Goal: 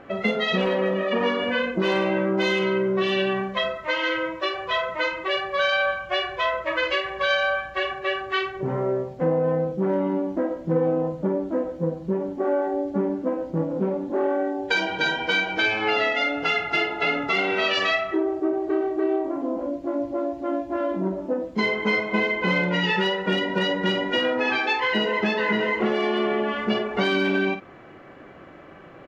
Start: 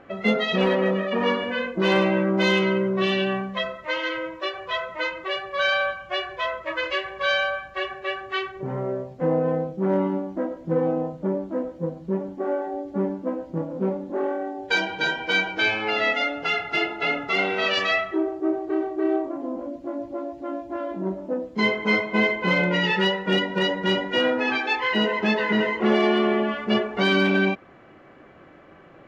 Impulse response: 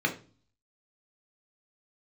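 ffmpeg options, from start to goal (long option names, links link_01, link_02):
-filter_complex "[0:a]acompressor=threshold=-23dB:ratio=6,asplit=2[link_01][link_02];[link_02]adelay=49,volume=-9dB[link_03];[link_01][link_03]amix=inputs=2:normalize=0,volume=3.5dB"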